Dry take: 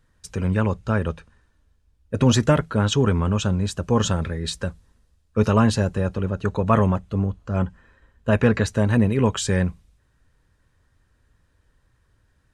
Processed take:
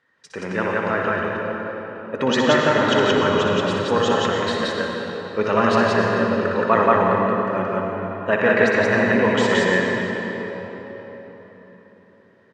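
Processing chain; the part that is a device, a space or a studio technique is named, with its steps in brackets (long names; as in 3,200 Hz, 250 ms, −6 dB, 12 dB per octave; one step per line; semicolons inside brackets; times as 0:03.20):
station announcement (band-pass filter 360–3,700 Hz; parametric band 1,900 Hz +9.5 dB 0.23 octaves; loudspeakers that aren't time-aligned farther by 21 metres −7 dB, 60 metres −1 dB; convolution reverb RT60 4.4 s, pre-delay 80 ms, DRR 0 dB)
level +2 dB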